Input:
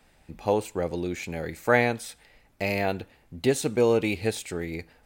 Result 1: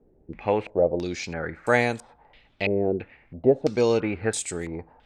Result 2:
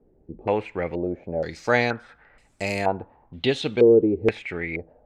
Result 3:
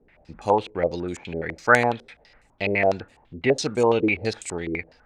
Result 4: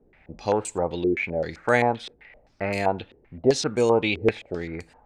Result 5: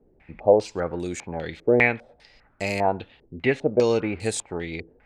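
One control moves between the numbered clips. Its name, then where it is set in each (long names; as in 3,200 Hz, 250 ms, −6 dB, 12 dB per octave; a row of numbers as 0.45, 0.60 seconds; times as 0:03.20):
low-pass on a step sequencer, speed: 3, 2.1, 12, 7.7, 5 Hertz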